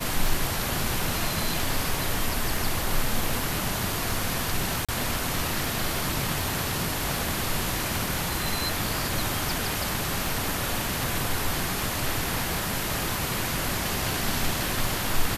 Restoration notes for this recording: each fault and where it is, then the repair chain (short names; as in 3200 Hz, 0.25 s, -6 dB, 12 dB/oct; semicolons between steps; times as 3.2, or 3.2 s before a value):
tick 78 rpm
4.85–4.89 gap 36 ms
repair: de-click; interpolate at 4.85, 36 ms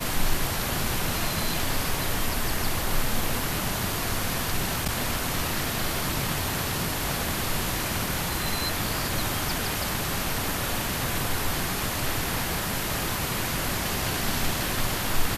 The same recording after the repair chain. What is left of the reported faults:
none